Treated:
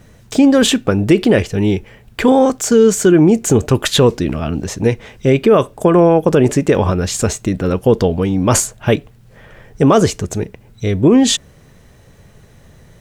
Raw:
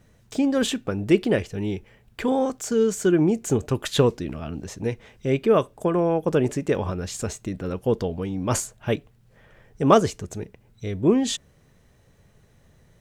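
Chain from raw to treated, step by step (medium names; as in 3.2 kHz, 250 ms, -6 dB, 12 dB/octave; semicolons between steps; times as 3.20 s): loudness maximiser +13.5 dB; trim -1 dB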